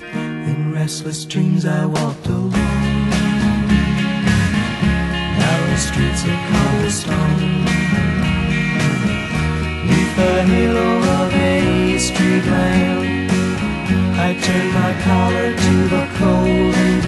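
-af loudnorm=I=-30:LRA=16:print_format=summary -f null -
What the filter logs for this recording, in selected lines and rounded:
Input Integrated:    -16.4 LUFS
Input True Peak:      -3.2 dBTP
Input LRA:             1.6 LU
Input Threshold:     -26.4 LUFS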